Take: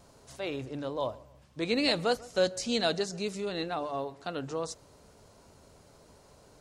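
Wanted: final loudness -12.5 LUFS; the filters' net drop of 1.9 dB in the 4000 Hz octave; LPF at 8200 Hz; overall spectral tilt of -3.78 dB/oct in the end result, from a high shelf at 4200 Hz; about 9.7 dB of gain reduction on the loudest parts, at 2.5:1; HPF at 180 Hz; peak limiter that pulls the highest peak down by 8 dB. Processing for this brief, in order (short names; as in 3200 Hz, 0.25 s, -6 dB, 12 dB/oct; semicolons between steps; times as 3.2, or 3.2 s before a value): HPF 180 Hz; LPF 8200 Hz; bell 4000 Hz -4.5 dB; high shelf 4200 Hz +5 dB; compressor 2.5:1, threshold -37 dBFS; gain +29.5 dB; limiter -1.5 dBFS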